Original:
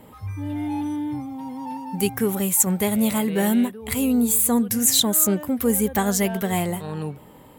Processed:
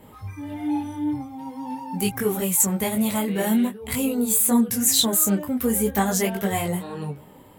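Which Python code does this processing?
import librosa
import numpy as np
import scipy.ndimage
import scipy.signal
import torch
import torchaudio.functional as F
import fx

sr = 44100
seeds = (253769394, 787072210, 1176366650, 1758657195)

y = fx.detune_double(x, sr, cents=16)
y = F.gain(torch.from_numpy(y), 3.0).numpy()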